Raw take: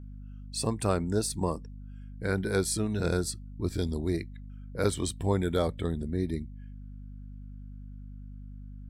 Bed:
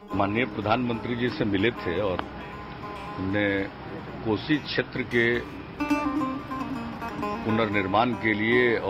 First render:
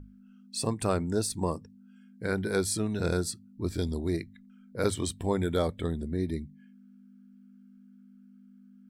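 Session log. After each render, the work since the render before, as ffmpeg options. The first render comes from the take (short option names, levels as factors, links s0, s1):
-af "bandreject=f=50:t=h:w=6,bandreject=f=100:t=h:w=6,bandreject=f=150:t=h:w=6"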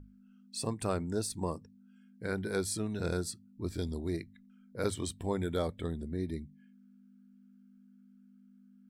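-af "volume=0.562"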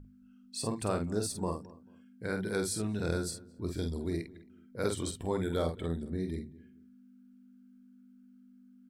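-filter_complex "[0:a]asplit=2[s0][s1];[s1]adelay=48,volume=0.501[s2];[s0][s2]amix=inputs=2:normalize=0,asplit=2[s3][s4];[s4]adelay=220,lowpass=f=1400:p=1,volume=0.106,asplit=2[s5][s6];[s6]adelay=220,lowpass=f=1400:p=1,volume=0.28[s7];[s3][s5][s7]amix=inputs=3:normalize=0"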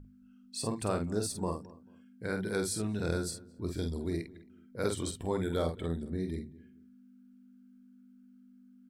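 -af anull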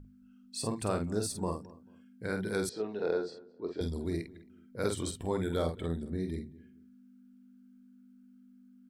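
-filter_complex "[0:a]asettb=1/sr,asplit=3[s0][s1][s2];[s0]atrim=end=2.694[s3];[s1]atrim=start=2.69:end=3.81,asetpts=PTS-STARTPTS,afade=t=in:d=0.004:c=qsin,afade=t=out:st=1.116:d=0.004:c=qsin,highpass=340,equalizer=f=440:t=q:w=4:g=9,equalizer=f=800:t=q:w=4:g=5,equalizer=f=1500:t=q:w=4:g=-3,equalizer=f=2300:t=q:w=4:g=-5,equalizer=f=3600:t=q:w=4:g=-5,lowpass=f=4000:w=0.5412,lowpass=f=4000:w=1.3066[s4];[s2]atrim=start=3.806[s5];[s3][s4]acrossfade=d=0.004:c1=hsin:c2=qsin[s6];[s6][s5]acrossfade=d=0.004:c1=qsin:c2=hsin"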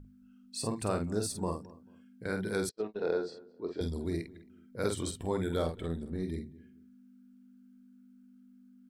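-filter_complex "[0:a]asettb=1/sr,asplit=3[s0][s1][s2];[s0]atrim=end=0.564[s3];[s1]atrim=start=0.56:end=1.21,asetpts=PTS-STARTPTS,afade=t=in:d=0.004:c=qsin,afade=t=out:st=0.646:d=0.004:c=qsin,bandreject=f=3300:w=12[s4];[s2]atrim=start=1.206[s5];[s3][s4]acrossfade=d=0.004:c1=hsin:c2=qsin[s6];[s6][s5]acrossfade=d=0.004:c1=qsin:c2=hsin,asplit=3[s7][s8][s9];[s7]afade=t=out:st=2.23:d=0.02[s10];[s8]agate=range=0.0112:threshold=0.0112:ratio=16:release=100:detection=peak,afade=t=in:st=2.23:d=0.02,afade=t=out:st=3.12:d=0.02[s11];[s9]afade=t=in:st=3.12:d=0.02[s12];[s10][s11][s12]amix=inputs=3:normalize=0,asettb=1/sr,asplit=3[s13][s14][s15];[s13]atrim=end=5.644[s16];[s14]atrim=start=5.64:end=6.23,asetpts=PTS-STARTPTS,afade=t=in:d=0.004:c=qsin,afade=t=out:st=0.586:d=0.004:c=qsin,aeval=exprs='if(lt(val(0),0),0.708*val(0),val(0))':c=same[s17];[s15]atrim=start=6.226[s18];[s16][s17]acrossfade=d=0.004:c1=hsin:c2=qsin[s19];[s19][s18]acrossfade=d=0.004:c1=qsin:c2=hsin"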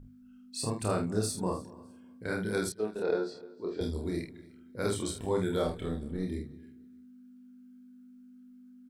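-filter_complex "[0:a]asplit=2[s0][s1];[s1]adelay=28,volume=0.708[s2];[s0][s2]amix=inputs=2:normalize=0,aecho=1:1:304|608:0.075|0.0172"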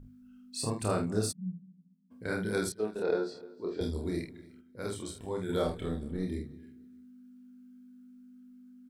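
-filter_complex "[0:a]asplit=3[s0][s1][s2];[s0]afade=t=out:st=1.31:d=0.02[s3];[s1]asuperpass=centerf=180:order=4:qfactor=5.8,afade=t=in:st=1.31:d=0.02,afade=t=out:st=2.1:d=0.02[s4];[s2]afade=t=in:st=2.1:d=0.02[s5];[s3][s4][s5]amix=inputs=3:normalize=0,asplit=3[s6][s7][s8];[s6]atrim=end=4.612[s9];[s7]atrim=start=4.608:end=5.492,asetpts=PTS-STARTPTS,volume=0.501[s10];[s8]atrim=start=5.488[s11];[s9][s10]acrossfade=d=0.004:c1=hsin:c2=hsin[s12];[s12][s11]acrossfade=d=0.004:c1=hsin:c2=hsin"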